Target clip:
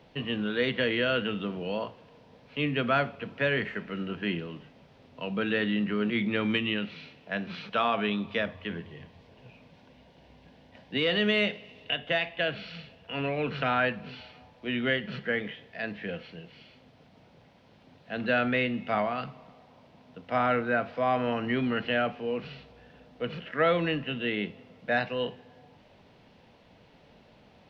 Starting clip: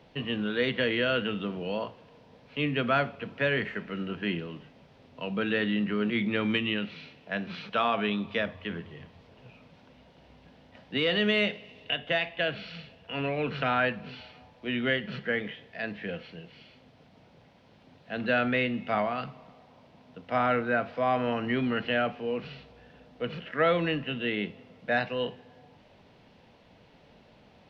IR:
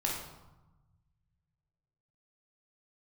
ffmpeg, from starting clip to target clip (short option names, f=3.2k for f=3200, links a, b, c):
-filter_complex "[0:a]asettb=1/sr,asplit=3[a][b][c];[a]atrim=end=8.704[d];[b]atrim=start=8.7:end=11.02,asetpts=PTS-STARTPTS,afade=t=in:d=0.004:c=qsin,afade=t=out:st=2.316:d=0.004:c=qsin,bandreject=f=1.3k:w=6.9[e];[c]atrim=start=11.016[f];[d][e]acrossfade=d=0.004:c1=hsin:c2=qsin[g];[g][f]acrossfade=d=0.004:c1=qsin:c2=hsin"